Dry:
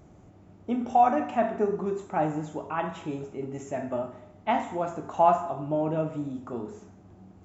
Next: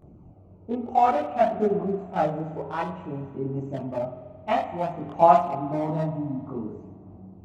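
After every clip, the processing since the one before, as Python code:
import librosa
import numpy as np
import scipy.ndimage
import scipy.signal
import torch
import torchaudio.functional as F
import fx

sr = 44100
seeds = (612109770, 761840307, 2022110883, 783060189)

y = fx.wiener(x, sr, points=25)
y = fx.chorus_voices(y, sr, voices=2, hz=0.28, base_ms=23, depth_ms=1.2, mix_pct=65)
y = fx.rev_spring(y, sr, rt60_s=2.3, pass_ms=(44,), chirp_ms=80, drr_db=12.5)
y = F.gain(torch.from_numpy(y), 5.5).numpy()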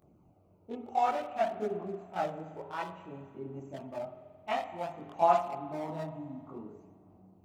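y = fx.tilt_eq(x, sr, slope=2.5)
y = F.gain(torch.from_numpy(y), -7.5).numpy()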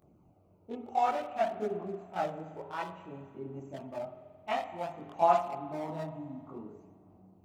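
y = x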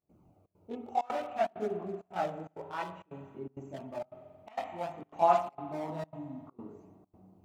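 y = fx.step_gate(x, sr, bpm=164, pattern='.xxxx.xxxxx', floor_db=-24.0, edge_ms=4.5)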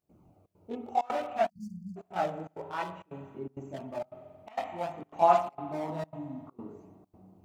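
y = fx.spec_erase(x, sr, start_s=1.49, length_s=0.48, low_hz=230.0, high_hz=4400.0)
y = F.gain(torch.from_numpy(y), 2.5).numpy()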